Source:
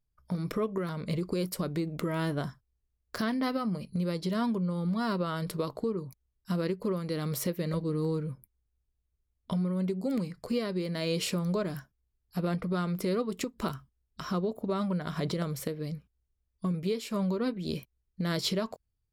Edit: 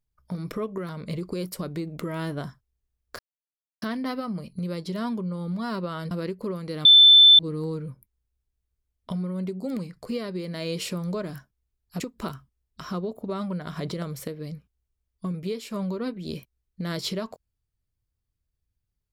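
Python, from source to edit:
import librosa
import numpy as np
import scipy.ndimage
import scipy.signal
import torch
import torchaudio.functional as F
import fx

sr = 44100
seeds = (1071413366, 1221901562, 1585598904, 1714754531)

y = fx.edit(x, sr, fx.insert_silence(at_s=3.19, length_s=0.63),
    fx.cut(start_s=5.48, length_s=1.04),
    fx.bleep(start_s=7.26, length_s=0.54, hz=3530.0, db=-9.0),
    fx.cut(start_s=12.41, length_s=0.99), tone=tone)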